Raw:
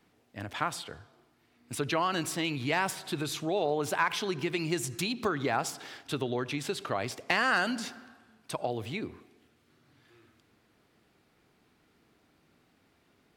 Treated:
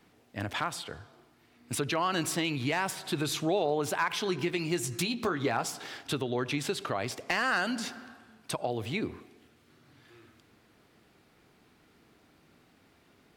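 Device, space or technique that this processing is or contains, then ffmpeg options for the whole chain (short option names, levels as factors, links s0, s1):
clipper into limiter: -filter_complex "[0:a]asettb=1/sr,asplit=3[s0][s1][s2];[s0]atrim=end=4.244[s3];[s1]atrim=start=4.24:end=5.87,asetpts=PTS-STARTPTS,afade=t=in:d=0.004:c=qsin,afade=t=out:st=1.626:d=0.004:c=qsin,asplit=2[s4][s5];[s5]adelay=17,volume=0.355[s6];[s4][s6]amix=inputs=2:normalize=0,atrim=end_sample=71883[s7];[s2]atrim=start=5.866[s8];[s3][s7]acrossfade=d=0.004:c1=hsin:c2=qsin[s9];[s9][s8]acrossfade=d=0.004:c1=qsin:c2=hsin,asoftclip=type=hard:threshold=0.141,alimiter=limit=0.0708:level=0:latency=1:release=469,volume=1.68"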